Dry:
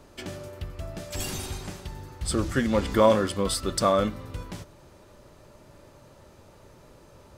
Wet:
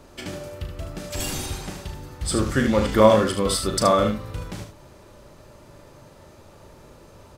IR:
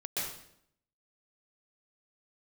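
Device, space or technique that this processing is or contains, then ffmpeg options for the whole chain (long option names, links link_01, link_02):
slapback doubling: -filter_complex "[0:a]asplit=3[link_01][link_02][link_03];[link_02]adelay=37,volume=-8dB[link_04];[link_03]adelay=75,volume=-7dB[link_05];[link_01][link_04][link_05]amix=inputs=3:normalize=0,volume=3dB"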